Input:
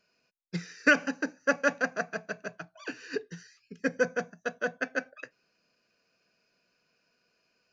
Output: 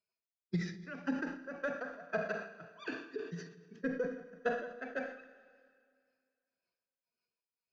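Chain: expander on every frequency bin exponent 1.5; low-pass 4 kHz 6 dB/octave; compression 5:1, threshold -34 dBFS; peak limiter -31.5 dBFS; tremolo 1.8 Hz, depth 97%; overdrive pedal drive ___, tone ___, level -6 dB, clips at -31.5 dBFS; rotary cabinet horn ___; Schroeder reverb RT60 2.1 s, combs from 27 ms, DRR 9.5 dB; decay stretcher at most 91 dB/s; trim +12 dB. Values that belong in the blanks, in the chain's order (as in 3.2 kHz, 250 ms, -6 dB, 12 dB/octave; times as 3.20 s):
9 dB, 1.2 kHz, 5.5 Hz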